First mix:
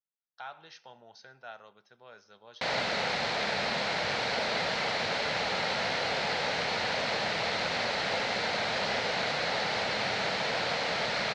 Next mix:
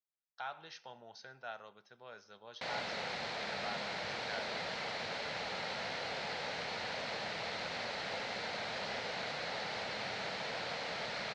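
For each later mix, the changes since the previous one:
background -9.5 dB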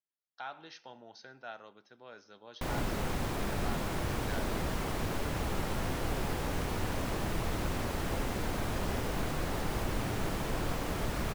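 background: remove speaker cabinet 330–5400 Hz, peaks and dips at 370 Hz -9 dB, 1100 Hz -8 dB, 2100 Hz +4 dB, 4200 Hz +8 dB; master: add bell 290 Hz +12 dB 0.56 oct

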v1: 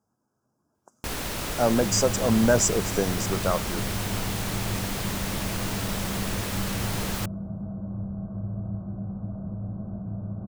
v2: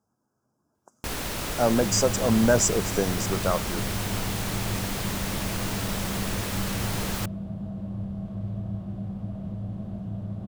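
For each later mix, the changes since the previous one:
second sound: remove brick-wall FIR low-pass 1600 Hz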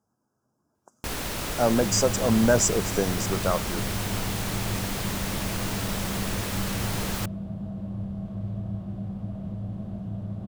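none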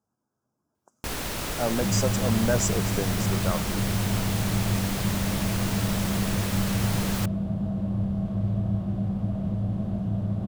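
speech -5.0 dB; second sound +6.0 dB

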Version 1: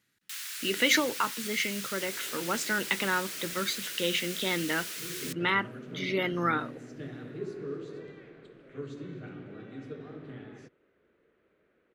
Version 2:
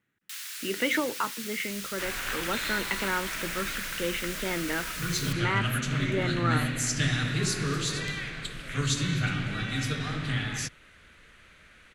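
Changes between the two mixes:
speech: add running mean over 9 samples; second sound: remove band-pass 400 Hz, Q 2.7

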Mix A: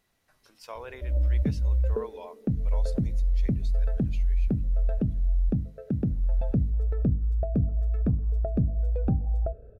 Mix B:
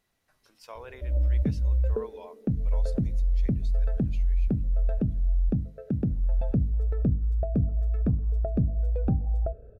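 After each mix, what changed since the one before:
speech -3.0 dB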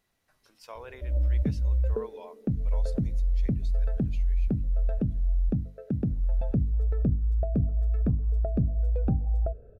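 reverb: off

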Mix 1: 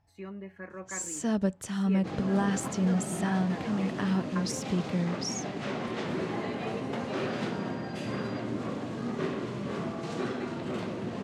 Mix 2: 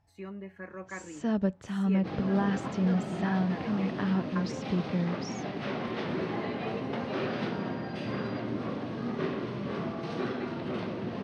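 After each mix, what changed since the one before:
first sound: add air absorption 180 m; second sound: add polynomial smoothing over 15 samples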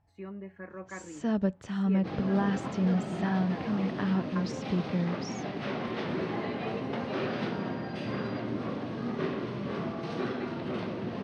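speech: add LPF 2000 Hz 6 dB/oct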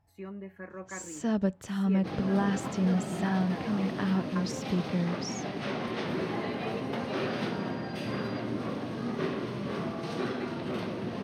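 master: remove air absorption 98 m

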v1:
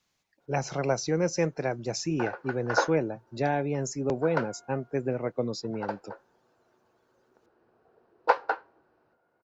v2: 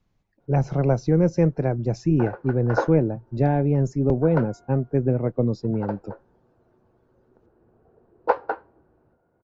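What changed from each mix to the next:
master: add tilt -4.5 dB/oct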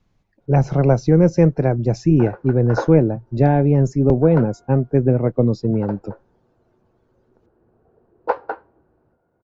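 speech +5.5 dB

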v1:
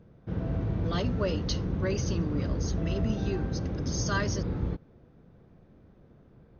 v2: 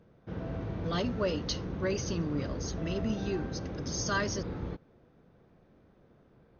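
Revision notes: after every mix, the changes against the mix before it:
background: add low shelf 260 Hz -9 dB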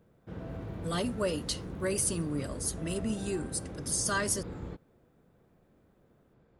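background -3.5 dB; master: remove brick-wall FIR low-pass 6600 Hz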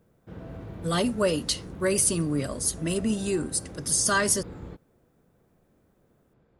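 speech +7.0 dB

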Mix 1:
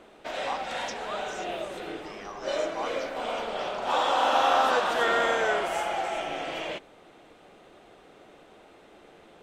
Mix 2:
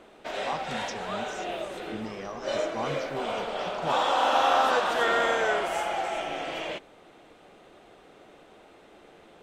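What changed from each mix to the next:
speech: remove brick-wall FIR high-pass 690 Hz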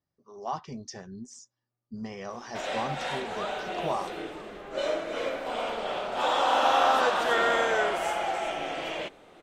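background: entry +2.30 s

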